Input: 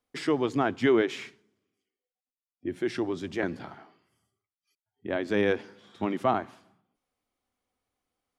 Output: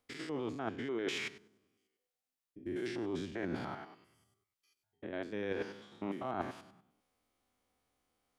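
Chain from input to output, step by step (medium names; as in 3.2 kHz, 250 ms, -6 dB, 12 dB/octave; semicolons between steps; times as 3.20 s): spectrogram pixelated in time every 100 ms; reverse; compression 10:1, threshold -39 dBFS, peak gain reduction 19 dB; reverse; trim +4.5 dB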